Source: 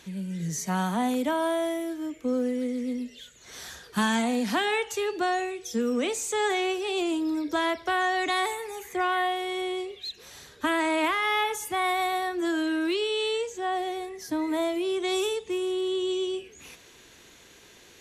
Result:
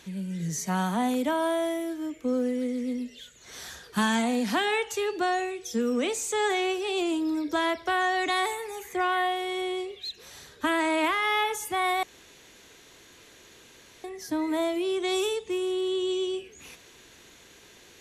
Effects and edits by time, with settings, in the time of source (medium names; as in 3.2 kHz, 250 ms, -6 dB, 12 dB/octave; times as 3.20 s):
12.03–14.04 s: room tone